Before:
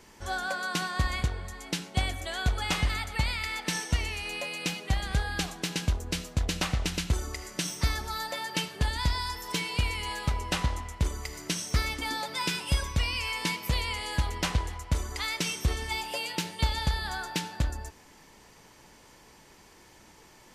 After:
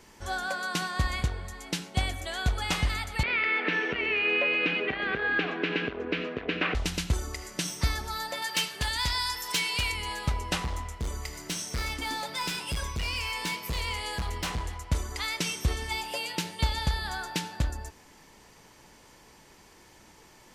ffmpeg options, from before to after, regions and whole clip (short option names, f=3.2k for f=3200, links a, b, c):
-filter_complex "[0:a]asettb=1/sr,asplit=3[a][b][c];[a]atrim=end=3.234[d];[b]atrim=start=3.23:end=6.75,asetpts=PTS-STARTPTS,afade=t=in:d=0.004:c=qsin,afade=t=out:st=3.516:d=0.004:c=qsin,acompressor=threshold=-35dB:ratio=2:attack=3.2:release=140:knee=1:detection=peak,aeval=exprs='0.112*sin(PI/2*2.24*val(0)/0.112)':c=same,highpass=270,equalizer=f=280:t=q:w=4:g=7,equalizer=f=420:t=q:w=4:g=7,equalizer=f=850:t=q:w=4:g=-8,equalizer=f=1.6k:t=q:w=4:g=4,equalizer=f=2.5k:t=q:w=4:g=5,lowpass=f=2.8k:w=0.5412,lowpass=f=2.8k:w=1.3066[e];[c]atrim=start=6.746[f];[d][e]acrossfade=d=0.004:c1=hsin:c2=qsin[g];[g][f]acrossfade=d=0.004:c1=qsin:c2=hsin,asettb=1/sr,asplit=3[h][i][j];[h]atrim=end=8.424[k];[i]atrim=start=8.42:end=9.92,asetpts=PTS-STARTPTS,afade=t=in:d=0.004:c=qsin,afade=t=out:st=1.496:d=0.004:c=qsin,tiltshelf=f=820:g=-6,volume=21dB,asoftclip=hard,volume=-21dB[l];[j]atrim=start=9.916[m];[k][l]acrossfade=d=0.004:c1=hsin:c2=qsin[n];[n][m]acrossfade=d=0.004:c1=qsin:c2=hsin,asettb=1/sr,asplit=3[o][p][q];[o]atrim=end=10.624[r];[p]atrim=start=10.62:end=14.7,asetpts=PTS-STARTPTS,afade=t=in:d=0.004:c=qsin,afade=t=out:st=4.076:d=0.004:c=qsin,asoftclip=type=hard:threshold=-27.5dB,asplit=2[s][t];[t]adelay=26,volume=-12dB[u];[s][u]amix=inputs=2:normalize=0,atrim=end_sample=179928[v];[q]atrim=start=14.696[w];[r][v]acrossfade=d=0.004:c1=hsin:c2=qsin[x];[x][w]acrossfade=d=0.004:c1=qsin:c2=hsin"